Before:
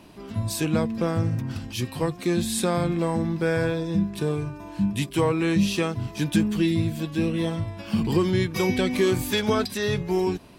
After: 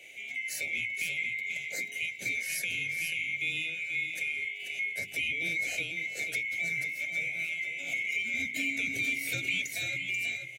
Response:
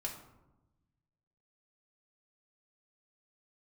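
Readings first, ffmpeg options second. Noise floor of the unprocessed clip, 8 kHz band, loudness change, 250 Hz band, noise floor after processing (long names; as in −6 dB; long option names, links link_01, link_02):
−41 dBFS, −4.5 dB, −6.0 dB, −25.0 dB, −42 dBFS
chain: -filter_complex "[0:a]afftfilt=real='real(if(lt(b,920),b+92*(1-2*mod(floor(b/92),2)),b),0)':imag='imag(if(lt(b,920),b+92*(1-2*mod(floor(b/92),2)),b),0)':win_size=2048:overlap=0.75,highpass=frequency=100:width=0.5412,highpass=frequency=100:width=1.3066,bandreject=frequency=50:width_type=h:width=6,bandreject=frequency=100:width_type=h:width=6,bandreject=frequency=150:width_type=h:width=6,bandreject=frequency=200:width_type=h:width=6,bandreject=frequency=250:width_type=h:width=6,bandreject=frequency=300:width_type=h:width=6,bandreject=frequency=350:width_type=h:width=6,acrossover=split=240[link_01][link_02];[link_02]acompressor=threshold=-37dB:ratio=3[link_03];[link_01][link_03]amix=inputs=2:normalize=0,asuperstop=centerf=1100:order=4:qfactor=0.97,aecho=1:1:486:0.473,adynamicequalizer=threshold=0.0158:dfrequency=1600:dqfactor=0.7:tfrequency=1600:tqfactor=0.7:attack=5:release=100:ratio=0.375:range=3:mode=boostabove:tftype=highshelf"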